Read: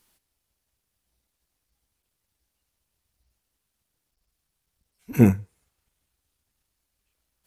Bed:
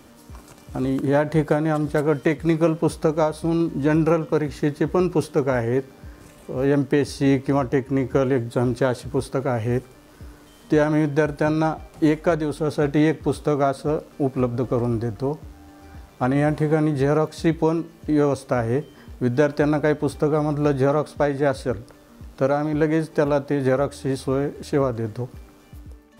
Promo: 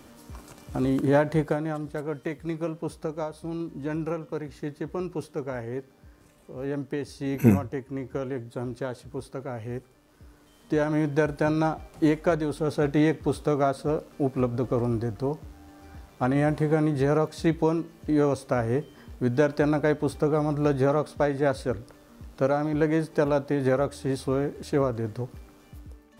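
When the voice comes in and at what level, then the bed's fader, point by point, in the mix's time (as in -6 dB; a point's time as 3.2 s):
2.25 s, -3.0 dB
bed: 1.16 s -1.5 dB
1.9 s -11.5 dB
10.04 s -11.5 dB
11.22 s -3.5 dB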